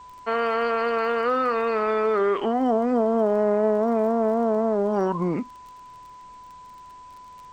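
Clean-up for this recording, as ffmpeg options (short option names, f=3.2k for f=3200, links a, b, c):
-af "adeclick=t=4,bandreject=f=1k:w=30,agate=range=-21dB:threshold=-37dB"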